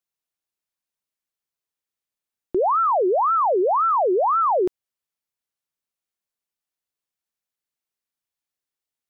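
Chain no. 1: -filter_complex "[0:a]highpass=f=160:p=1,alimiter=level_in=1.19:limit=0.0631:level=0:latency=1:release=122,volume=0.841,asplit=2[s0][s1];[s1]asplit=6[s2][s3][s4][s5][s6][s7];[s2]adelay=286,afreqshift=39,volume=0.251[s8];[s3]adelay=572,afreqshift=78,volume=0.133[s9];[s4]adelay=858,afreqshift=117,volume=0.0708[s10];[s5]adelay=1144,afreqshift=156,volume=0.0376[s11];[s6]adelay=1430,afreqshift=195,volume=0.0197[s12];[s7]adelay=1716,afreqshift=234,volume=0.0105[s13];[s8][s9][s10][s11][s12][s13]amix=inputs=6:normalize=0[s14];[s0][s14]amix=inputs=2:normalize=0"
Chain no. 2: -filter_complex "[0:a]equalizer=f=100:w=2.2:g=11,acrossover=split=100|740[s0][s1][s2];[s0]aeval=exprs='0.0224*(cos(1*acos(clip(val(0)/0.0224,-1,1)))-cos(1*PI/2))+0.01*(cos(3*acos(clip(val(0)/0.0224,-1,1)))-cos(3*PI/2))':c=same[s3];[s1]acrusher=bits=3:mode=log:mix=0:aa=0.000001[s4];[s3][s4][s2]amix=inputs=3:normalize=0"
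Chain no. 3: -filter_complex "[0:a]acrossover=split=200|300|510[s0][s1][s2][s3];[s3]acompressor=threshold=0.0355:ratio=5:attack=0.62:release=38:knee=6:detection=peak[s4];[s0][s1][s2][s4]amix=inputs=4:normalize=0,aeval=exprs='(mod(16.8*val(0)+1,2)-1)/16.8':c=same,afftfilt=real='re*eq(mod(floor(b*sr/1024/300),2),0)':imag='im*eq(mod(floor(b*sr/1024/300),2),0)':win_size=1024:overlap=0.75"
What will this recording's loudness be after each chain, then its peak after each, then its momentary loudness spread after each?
-29.0 LUFS, -19.5 LUFS, -30.5 LUFS; -22.0 dBFS, -14.0 dBFS, -20.0 dBFS; 14 LU, 4 LU, 4 LU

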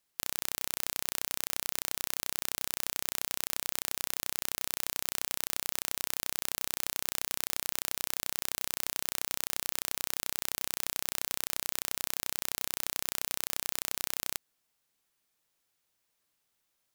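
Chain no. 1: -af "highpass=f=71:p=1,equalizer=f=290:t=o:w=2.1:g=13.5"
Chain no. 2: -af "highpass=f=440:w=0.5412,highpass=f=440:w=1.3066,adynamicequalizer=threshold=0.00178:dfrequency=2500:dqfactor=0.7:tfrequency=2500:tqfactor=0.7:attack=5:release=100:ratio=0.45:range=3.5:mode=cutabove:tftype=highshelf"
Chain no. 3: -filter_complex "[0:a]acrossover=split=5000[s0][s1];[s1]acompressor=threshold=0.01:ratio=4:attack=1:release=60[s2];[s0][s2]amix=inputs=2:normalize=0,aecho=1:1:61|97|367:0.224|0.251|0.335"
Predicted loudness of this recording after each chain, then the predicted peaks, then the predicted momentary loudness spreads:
-32.5 LUFS, -39.0 LUFS, -39.5 LUFS; -4.0 dBFS, -5.5 dBFS, -16.5 dBFS; 0 LU, 2 LU, 0 LU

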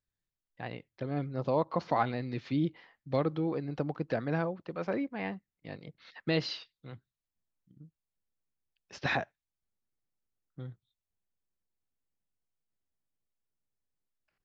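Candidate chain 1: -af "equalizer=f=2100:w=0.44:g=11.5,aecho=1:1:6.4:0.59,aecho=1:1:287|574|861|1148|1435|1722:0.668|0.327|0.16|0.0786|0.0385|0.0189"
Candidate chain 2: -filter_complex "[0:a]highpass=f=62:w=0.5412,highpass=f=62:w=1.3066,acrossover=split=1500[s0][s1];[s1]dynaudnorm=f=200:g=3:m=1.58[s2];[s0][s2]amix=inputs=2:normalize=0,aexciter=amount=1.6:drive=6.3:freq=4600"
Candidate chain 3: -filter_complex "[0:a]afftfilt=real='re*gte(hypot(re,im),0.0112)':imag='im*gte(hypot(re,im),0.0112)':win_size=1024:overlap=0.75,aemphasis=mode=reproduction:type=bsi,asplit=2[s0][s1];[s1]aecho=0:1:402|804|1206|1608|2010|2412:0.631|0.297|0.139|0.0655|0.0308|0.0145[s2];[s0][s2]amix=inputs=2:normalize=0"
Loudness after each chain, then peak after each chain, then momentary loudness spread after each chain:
-26.5 LUFS, -33.0 LUFS, -30.0 LUFS; -7.5 dBFS, -14.0 dBFS, -11.5 dBFS; 20 LU, 17 LU, 18 LU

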